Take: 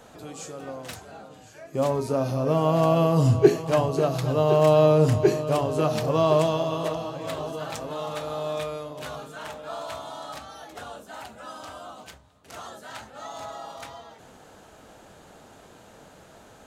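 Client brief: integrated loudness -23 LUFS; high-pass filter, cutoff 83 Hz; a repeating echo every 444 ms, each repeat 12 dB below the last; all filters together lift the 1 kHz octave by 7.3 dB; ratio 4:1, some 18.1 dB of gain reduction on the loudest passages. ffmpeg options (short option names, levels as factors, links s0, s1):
-af "highpass=83,equalizer=f=1000:t=o:g=9,acompressor=threshold=0.0282:ratio=4,aecho=1:1:444|888|1332:0.251|0.0628|0.0157,volume=3.55"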